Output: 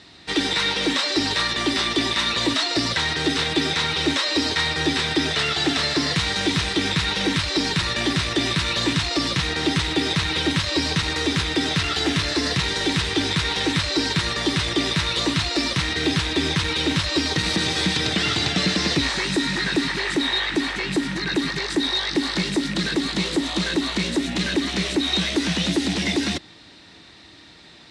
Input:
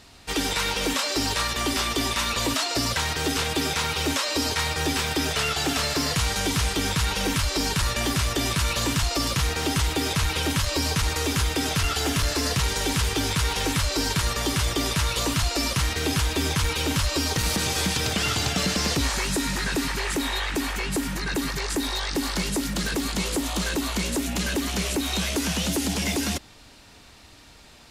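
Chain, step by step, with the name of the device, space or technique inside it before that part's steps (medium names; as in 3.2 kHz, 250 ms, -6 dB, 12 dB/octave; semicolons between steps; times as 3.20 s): car door speaker with a rattle (rattle on loud lows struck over -25 dBFS, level -22 dBFS; cabinet simulation 82–8100 Hz, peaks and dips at 170 Hz +6 dB, 330 Hz +9 dB, 1.9 kHz +7 dB, 3.8 kHz +9 dB, 6.9 kHz -6 dB)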